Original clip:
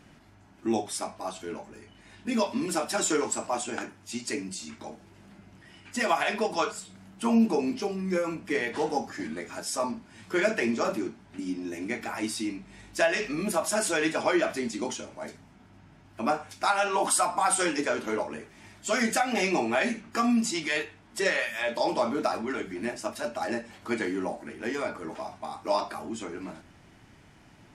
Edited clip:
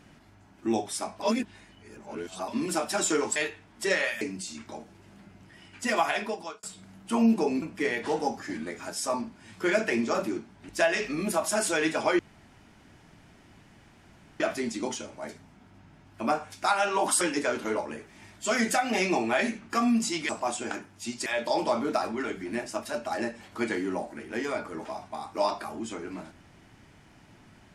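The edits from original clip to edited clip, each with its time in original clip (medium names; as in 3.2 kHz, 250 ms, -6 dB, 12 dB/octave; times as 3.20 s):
1.22–2.48 s: reverse
3.36–4.33 s: swap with 20.71–21.56 s
6.18–6.75 s: fade out
7.74–8.32 s: delete
11.39–12.89 s: delete
14.39 s: insert room tone 2.21 s
17.20–17.63 s: delete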